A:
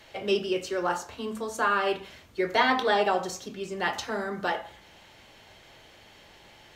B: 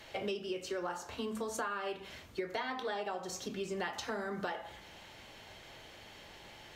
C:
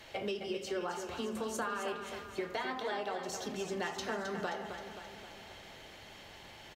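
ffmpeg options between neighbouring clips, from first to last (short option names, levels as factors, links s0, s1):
-af "acompressor=threshold=0.02:ratio=16"
-af "aecho=1:1:264|528|792|1056|1320|1584|1848:0.398|0.231|0.134|0.0777|0.0451|0.0261|0.0152"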